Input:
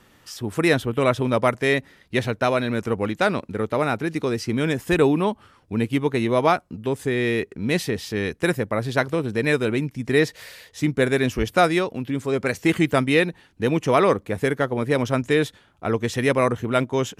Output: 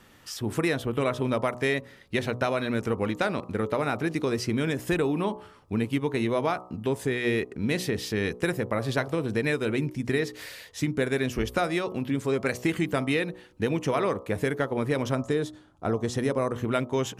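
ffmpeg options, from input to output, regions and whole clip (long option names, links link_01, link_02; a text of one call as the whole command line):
ffmpeg -i in.wav -filter_complex "[0:a]asettb=1/sr,asplit=3[link_01][link_02][link_03];[link_01]atrim=end=15.154[link_04];[link_02]atrim=start=15.15:end=16.52,asetpts=PTS-STARTPTS,afade=type=in:duration=0.004:curve=qsin,afade=type=out:start_time=1.366:duration=0.004:curve=qsin,lowpass=9700,equalizer=frequency=2400:width_type=o:width=1.2:gain=-10[link_05];[link_03]atrim=start=16.516[link_06];[link_04][link_05]acrossfade=duration=0.004:curve1=hsin:curve2=qsin[link_07];[link_07][link_06]acrossfade=duration=0.004:curve1=qsin:curve2=hsin,acompressor=threshold=-22dB:ratio=6,bandreject=frequency=61.36:width_type=h:width=4,bandreject=frequency=122.72:width_type=h:width=4,bandreject=frequency=184.08:width_type=h:width=4,bandreject=frequency=245.44:width_type=h:width=4,bandreject=frequency=306.8:width_type=h:width=4,bandreject=frequency=368.16:width_type=h:width=4,bandreject=frequency=429.52:width_type=h:width=4,bandreject=frequency=490.88:width_type=h:width=4,bandreject=frequency=552.24:width_type=h:width=4,bandreject=frequency=613.6:width_type=h:width=4,bandreject=frequency=674.96:width_type=h:width=4,bandreject=frequency=736.32:width_type=h:width=4,bandreject=frequency=797.68:width_type=h:width=4,bandreject=frequency=859.04:width_type=h:width=4,bandreject=frequency=920.4:width_type=h:width=4,bandreject=frequency=981.76:width_type=h:width=4,bandreject=frequency=1043.12:width_type=h:width=4,bandreject=frequency=1104.48:width_type=h:width=4,bandreject=frequency=1165.84:width_type=h:width=4,bandreject=frequency=1227.2:width_type=h:width=4,bandreject=frequency=1288.56:width_type=h:width=4" out.wav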